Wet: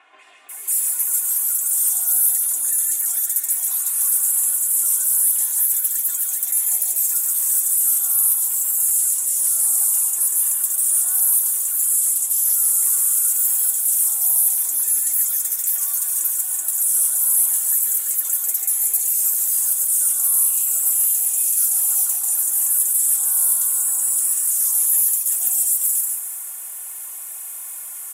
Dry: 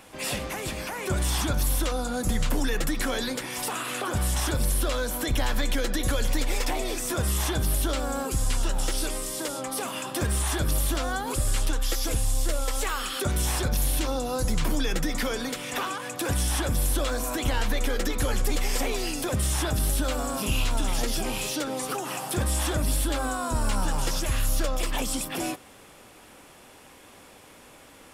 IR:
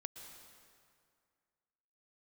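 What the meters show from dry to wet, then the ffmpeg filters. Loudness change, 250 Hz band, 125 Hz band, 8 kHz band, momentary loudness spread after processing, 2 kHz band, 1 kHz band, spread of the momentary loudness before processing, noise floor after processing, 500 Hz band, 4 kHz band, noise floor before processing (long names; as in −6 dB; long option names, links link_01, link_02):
+12.0 dB, below −25 dB, below −40 dB, +16.5 dB, 4 LU, below −10 dB, below −10 dB, 4 LU, −33 dBFS, below −20 dB, −9.5 dB, −51 dBFS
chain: -filter_complex "[0:a]highpass=970,highshelf=frequency=11000:gain=4.5,aecho=1:1:2.8:0.92,acrossover=split=6100[link_01][link_02];[link_01]acompressor=threshold=-47dB:ratio=6[link_03];[link_02]alimiter=level_in=6.5dB:limit=-24dB:level=0:latency=1:release=103,volume=-6.5dB[link_04];[link_03][link_04]amix=inputs=2:normalize=0,aexciter=amount=10.7:drive=5:freq=7100,acrossover=split=3000[link_05][link_06];[link_06]adelay=490[link_07];[link_05][link_07]amix=inputs=2:normalize=0,asplit=2[link_08][link_09];[1:a]atrim=start_sample=2205,adelay=142[link_10];[link_09][link_10]afir=irnorm=-1:irlink=0,volume=1dB[link_11];[link_08][link_11]amix=inputs=2:normalize=0"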